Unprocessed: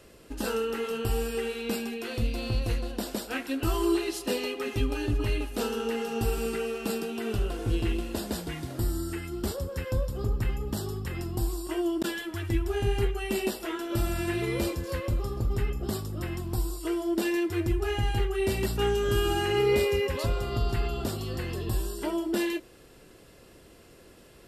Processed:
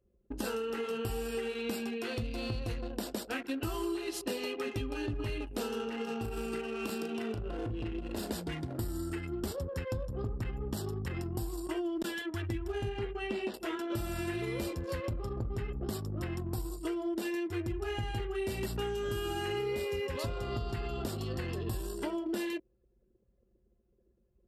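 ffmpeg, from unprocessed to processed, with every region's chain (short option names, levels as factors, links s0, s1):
-filter_complex "[0:a]asettb=1/sr,asplit=3[s0][s1][s2];[s0]atrim=end=5.844[s3];[s1]atrim=start=5.84:end=8.3,asetpts=PTS-STARTPTS,afade=t=in:d=0.004:c=qsin,afade=t=out:st=2.456:d=0.004:c=qsin,acompressor=threshold=0.0282:ratio=4:attack=3.2:release=140:knee=1:detection=peak,acrusher=bits=7:mode=log:mix=0:aa=0.000001,asplit=2[s4][s5];[s5]adelay=36,volume=0.562[s6];[s4][s6]amix=inputs=2:normalize=0,atrim=end_sample=108486[s7];[s2]atrim=start=8.296[s8];[s3][s7]acrossfade=d=0.004:c1=hsin:c2=qsin[s9];[s9][s8]acrossfade=d=0.004:c1=qsin:c2=hsin,asettb=1/sr,asplit=3[s10][s11][s12];[s10]atrim=end=12.894[s13];[s11]atrim=start=12.89:end=13.54,asetpts=PTS-STARTPTS,afade=t=in:d=0.004:c=qsin,afade=t=out:st=0.646:d=0.004:c=qsin,lowpass=11000,equalizer=f=72:t=o:w=1.4:g=-6.5,acrossover=split=4500[s14][s15];[s15]acompressor=threshold=0.00141:ratio=4:attack=1:release=60[s16];[s14][s16]amix=inputs=2:normalize=0[s17];[s12]atrim=start=13.536[s18];[s13][s17]acrossfade=d=0.004:c1=hsin:c2=qsin[s19];[s19][s18]acrossfade=d=0.004:c1=qsin:c2=hsin,anlmdn=0.631,highpass=55,acompressor=threshold=0.0251:ratio=6"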